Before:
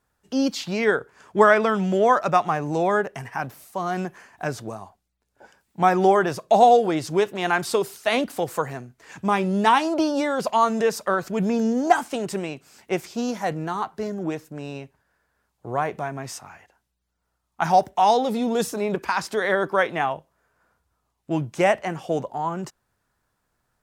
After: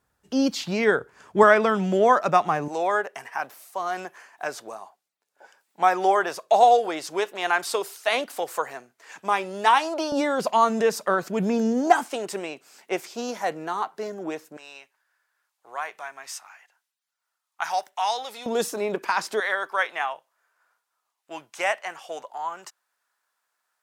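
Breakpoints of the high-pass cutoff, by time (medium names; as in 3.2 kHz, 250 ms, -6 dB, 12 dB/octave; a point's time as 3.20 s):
40 Hz
from 1.43 s 160 Hz
from 2.68 s 530 Hz
from 10.12 s 170 Hz
from 12.06 s 370 Hz
from 14.57 s 1.2 kHz
from 18.46 s 300 Hz
from 19.40 s 940 Hz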